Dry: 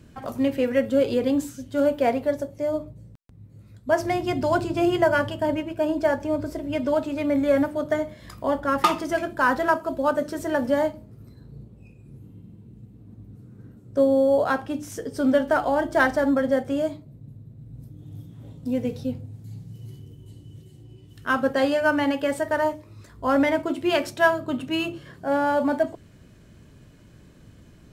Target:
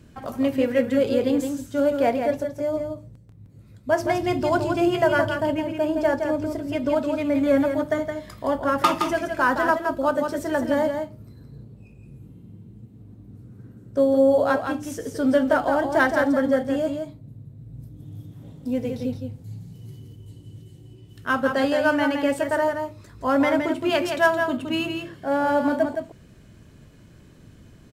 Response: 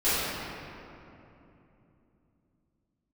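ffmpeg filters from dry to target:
-af "aecho=1:1:167:0.501"

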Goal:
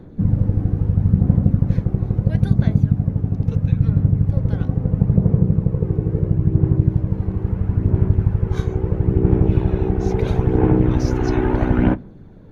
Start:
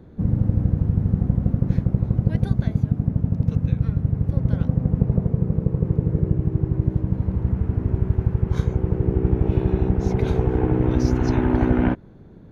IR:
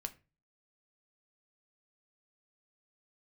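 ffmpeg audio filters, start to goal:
-filter_complex "[0:a]aphaser=in_gain=1:out_gain=1:delay=2.7:decay=0.35:speed=0.75:type=sinusoidal,asplit=2[a][b];[1:a]atrim=start_sample=2205,asetrate=66150,aresample=44100[c];[b][c]afir=irnorm=-1:irlink=0,volume=3.5dB[d];[a][d]amix=inputs=2:normalize=0,volume=-3dB"

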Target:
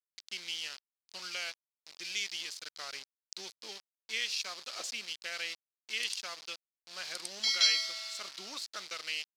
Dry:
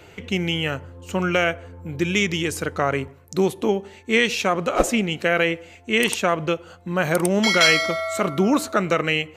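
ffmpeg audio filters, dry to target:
-af "aeval=exprs='val(0)*gte(abs(val(0)),0.0531)':c=same,bandpass=f=4.7k:t=q:w=3.6:csg=0"

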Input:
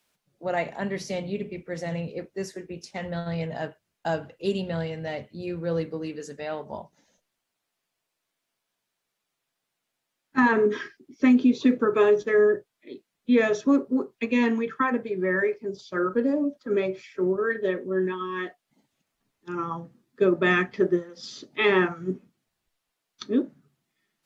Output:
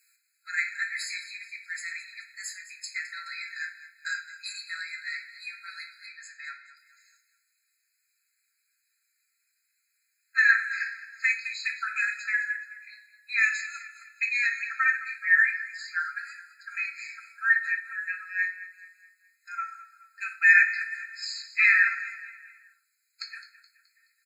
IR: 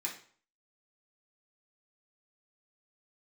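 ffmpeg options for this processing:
-filter_complex "[0:a]asettb=1/sr,asplit=3[a][b][c];[a]atrim=end=6.064[d];[b]atrim=start=6.06:end=6.77,asetpts=PTS-STARTPTS,afade=t=in:d=0.004:c=qsin,afade=t=out:st=0.706:d=0.004:c=qsin,aemphasis=mode=reproduction:type=75kf[e];[c]atrim=start=6.766[f];[d][e]acrossfade=d=0.004:c1=hsin:c2=qsin[g];[g][f]acrossfade=d=0.004:c1=qsin:c2=hsin,aecho=1:1:212|424|636|848:0.178|0.0782|0.0344|0.0151,asplit=2[h][i];[1:a]atrim=start_sample=2205,highshelf=f=3.4k:g=9.5[j];[i][j]afir=irnorm=-1:irlink=0,volume=-1.5dB[k];[h][k]amix=inputs=2:normalize=0,afftfilt=real='re*eq(mod(floor(b*sr/1024/1300),2),1)':imag='im*eq(mod(floor(b*sr/1024/1300),2),1)':win_size=1024:overlap=0.75,volume=1.5dB"

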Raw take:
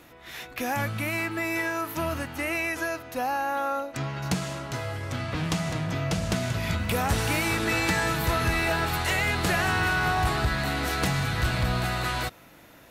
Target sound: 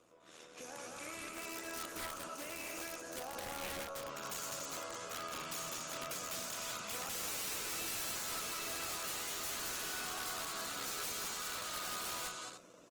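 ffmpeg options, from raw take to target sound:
-filter_complex "[0:a]acrossover=split=800|3100[a][b][c];[a]acompressor=threshold=-41dB:ratio=10[d];[b]alimiter=level_in=5dB:limit=-24dB:level=0:latency=1:release=432,volume=-5dB[e];[c]aphaser=in_gain=1:out_gain=1:delay=2.8:decay=0.23:speed=0.22:type=triangular[f];[d][e][f]amix=inputs=3:normalize=0,tremolo=f=79:d=0.75,asoftclip=type=hard:threshold=-31.5dB,aeval=exprs='val(0)+0.00224*(sin(2*PI*60*n/s)+sin(2*PI*2*60*n/s)/2+sin(2*PI*3*60*n/s)/3+sin(2*PI*4*60*n/s)/4+sin(2*PI*5*60*n/s)/5)':c=same,highpass=400,equalizer=f=520:t=q:w=4:g=4,equalizer=f=810:t=q:w=4:g=-8,equalizer=f=1.2k:t=q:w=4:g=6,equalizer=f=1.9k:t=q:w=4:g=-9,equalizer=f=4.1k:t=q:w=4:g=-3,equalizer=f=6.9k:t=q:w=4:g=6,lowpass=f=8.5k:w=0.5412,lowpass=f=8.5k:w=1.3066,asplit=2[g][h];[h]aecho=0:1:43.73|207|288.6:0.316|0.631|0.398[i];[g][i]amix=inputs=2:normalize=0,dynaudnorm=f=180:g=9:m=6.5dB,equalizer=f=2.1k:w=0.33:g=-10,aeval=exprs='(mod(39.8*val(0)+1,2)-1)/39.8':c=same,volume=-2dB" -ar 48000 -c:a libopus -b:a 20k

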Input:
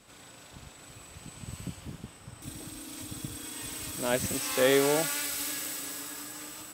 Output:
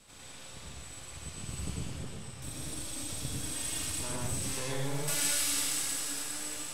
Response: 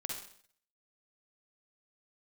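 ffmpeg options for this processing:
-filter_complex "[0:a]asettb=1/sr,asplit=3[a][b][c];[a]atrim=end=3.844[d];[b]atrim=start=3.84:end=5.08,asetpts=PTS-STARTPTS,afade=t=in:d=0.004:c=qsin,afade=t=out:st=1.236:d=0.004:c=qsin,acrossover=split=180[e][f];[f]acompressor=threshold=-37dB:ratio=8[g];[e][g]amix=inputs=2:normalize=0[h];[c]atrim=start=5.076[i];[d][h]acrossfade=d=0.004:c1=hsin:c2=qsin[j];[j][i]acrossfade=d=0.004:c1=qsin:c2=hsin,acrossover=split=130|2500[k][l][m];[l]aeval=exprs='max(val(0),0)':c=same[n];[k][n][m]amix=inputs=3:normalize=0[o];[1:a]atrim=start_sample=2205,atrim=end_sample=6174,asetrate=22932,aresample=44100[p];[o][p]afir=irnorm=-1:irlink=0"

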